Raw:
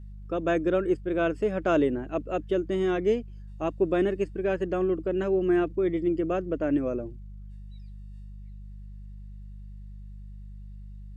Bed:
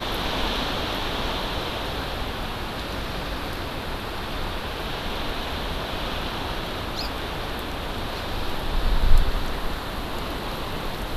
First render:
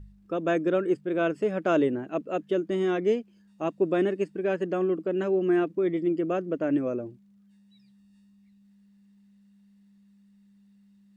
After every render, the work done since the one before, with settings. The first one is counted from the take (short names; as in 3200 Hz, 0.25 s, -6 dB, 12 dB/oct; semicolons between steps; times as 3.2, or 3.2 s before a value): de-hum 50 Hz, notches 3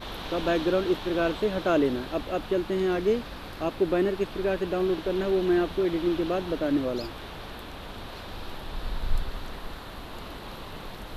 add bed -10 dB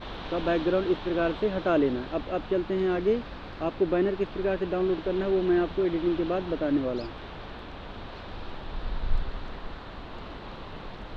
air absorption 170 m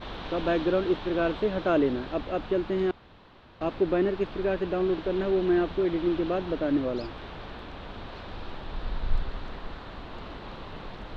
2.91–3.61 room tone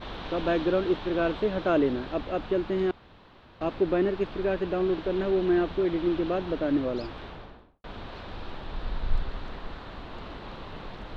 7.19–7.84 studio fade out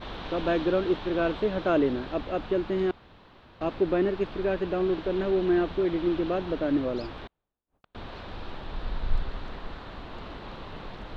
7.27–7.95 flipped gate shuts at -43 dBFS, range -41 dB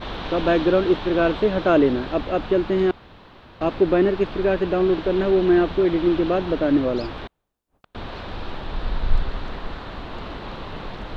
gain +7 dB